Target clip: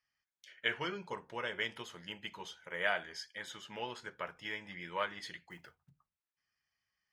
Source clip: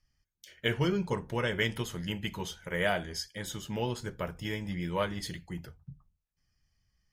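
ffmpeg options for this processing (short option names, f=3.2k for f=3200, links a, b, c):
-filter_complex "[0:a]bandpass=f=1.7k:t=q:w=0.81:csg=0,asettb=1/sr,asplit=3[a][b][c];[a]atrim=end=0.944[d];[b]atrim=start=0.94:end=2.84,asetpts=PTS-STARTPTS,afade=t=in:d=0.004:c=qsin,afade=t=out:st=1.896:d=0.004:c=qsin,equalizer=f=1.8k:t=o:w=1.4:g=-5.5[e];[c]atrim=start=2.836[f];[d][e]acrossfade=d=0.004:c1=hsin:c2=qsin[g];[g][f]acrossfade=d=0.004:c1=qsin:c2=hsin,asettb=1/sr,asplit=3[h][i][j];[h]atrim=end=5.504[k];[i]atrim=start=5.5:end=5.9,asetpts=PTS-STARTPTS,afade=t=in:d=0.004:c=qsin,afade=t=out:st=0.396:d=0.004:c=qsin,acrusher=bits=5:mode=log:mix=0:aa=0.000001[l];[j]atrim=start=5.896[m];[k][l]acrossfade=d=0.004:c1=hsin:c2=qsin[n];[n][m]acrossfade=d=0.004:c1=qsin:c2=hsin"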